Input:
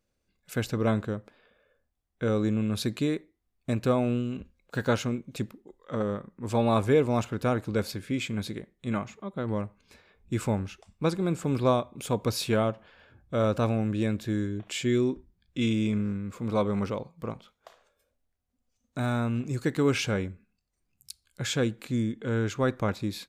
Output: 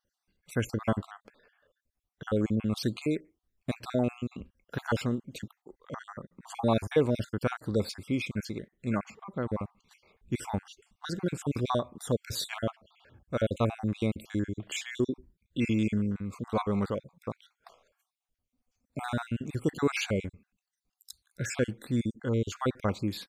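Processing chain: random holes in the spectrogram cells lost 46%

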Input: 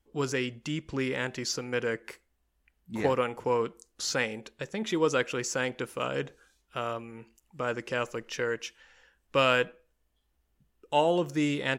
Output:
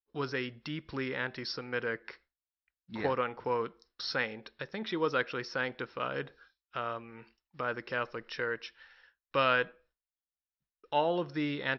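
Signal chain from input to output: expander -53 dBFS; rippled Chebyshev low-pass 5.5 kHz, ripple 6 dB; tape noise reduction on one side only encoder only

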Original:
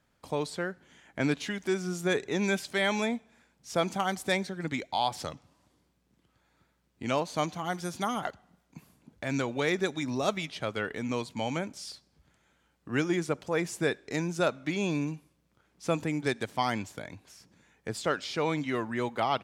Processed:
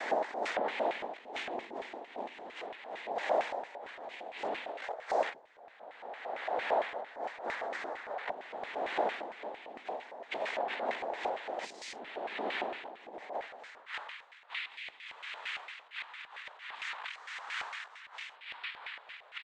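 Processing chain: reverse spectral sustain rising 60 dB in 2.49 s; compressor with a negative ratio -32 dBFS, ratio -0.5; high-pass sweep 420 Hz -> 1.9 kHz, 13.22–14.22 s; noise-vocoded speech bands 6; LFO band-pass square 4.4 Hz 680–2200 Hz; harmony voices -4 st -18 dB

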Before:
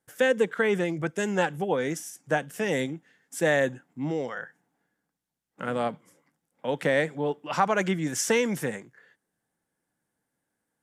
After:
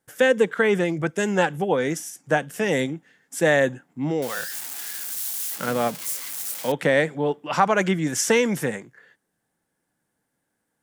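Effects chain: 4.22–6.72 s: zero-crossing glitches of -26 dBFS; trim +4.5 dB

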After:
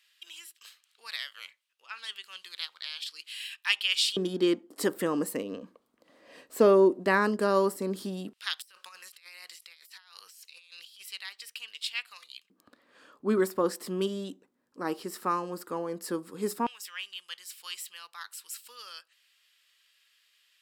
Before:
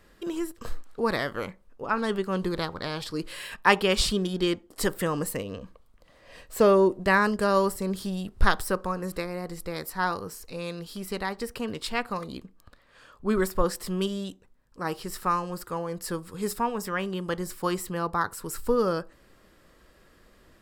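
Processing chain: LFO high-pass square 0.12 Hz 270–2900 Hz; 8.62–11.05 s: compressor with a negative ratio -49 dBFS, ratio -1; trim -4 dB

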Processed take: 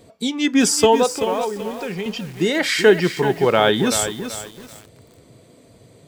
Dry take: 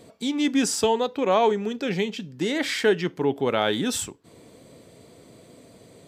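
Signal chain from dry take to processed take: spectral noise reduction 8 dB; 1.12–2.06 s: compression 2:1, threshold -39 dBFS, peak gain reduction 12.5 dB; bit-crushed delay 382 ms, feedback 35%, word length 7-bit, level -9 dB; trim +7.5 dB

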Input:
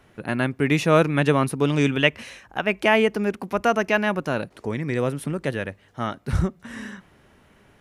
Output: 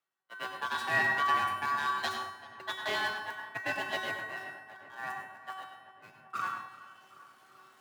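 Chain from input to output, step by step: jump at every zero crossing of -25.5 dBFS; band-stop 1.1 kHz, Q 20; gate -19 dBFS, range -54 dB; reverse; upward compressor, threshold -26 dBFS; reverse; ring modulator 1.2 kHz; one-sided clip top -17.5 dBFS; frequency shift +85 Hz; feedback comb 380 Hz, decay 0.88 s, mix 90%; filtered feedback delay 386 ms, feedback 73%, low-pass 2.7 kHz, level -17 dB; plate-style reverb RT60 0.58 s, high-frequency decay 0.45×, pre-delay 85 ms, DRR 4.5 dB; trim +6 dB

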